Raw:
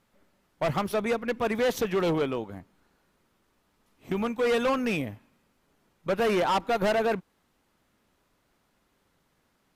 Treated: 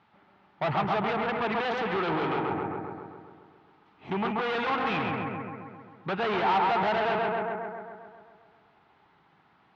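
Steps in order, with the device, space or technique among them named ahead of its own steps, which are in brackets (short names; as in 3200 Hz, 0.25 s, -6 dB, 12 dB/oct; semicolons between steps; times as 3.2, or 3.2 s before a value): analogue delay pedal into a guitar amplifier (analogue delay 0.133 s, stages 2048, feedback 62%, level -4 dB; tube stage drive 32 dB, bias 0.35; speaker cabinet 110–3700 Hz, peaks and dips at 250 Hz -6 dB, 530 Hz -9 dB, 830 Hz +9 dB, 1300 Hz +3 dB); gain +7 dB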